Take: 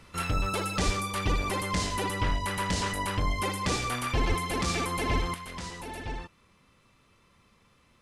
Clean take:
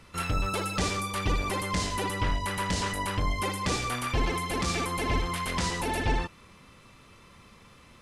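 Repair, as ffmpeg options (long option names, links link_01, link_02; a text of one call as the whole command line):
ffmpeg -i in.wav -filter_complex "[0:a]asplit=3[link_01][link_02][link_03];[link_01]afade=type=out:start_time=0.85:duration=0.02[link_04];[link_02]highpass=frequency=140:width=0.5412,highpass=frequency=140:width=1.3066,afade=type=in:start_time=0.85:duration=0.02,afade=type=out:start_time=0.97:duration=0.02[link_05];[link_03]afade=type=in:start_time=0.97:duration=0.02[link_06];[link_04][link_05][link_06]amix=inputs=3:normalize=0,asplit=3[link_07][link_08][link_09];[link_07]afade=type=out:start_time=4.28:duration=0.02[link_10];[link_08]highpass=frequency=140:width=0.5412,highpass=frequency=140:width=1.3066,afade=type=in:start_time=4.28:duration=0.02,afade=type=out:start_time=4.4:duration=0.02[link_11];[link_09]afade=type=in:start_time=4.4:duration=0.02[link_12];[link_10][link_11][link_12]amix=inputs=3:normalize=0,asetnsamples=nb_out_samples=441:pad=0,asendcmd='5.34 volume volume 9.5dB',volume=0dB" out.wav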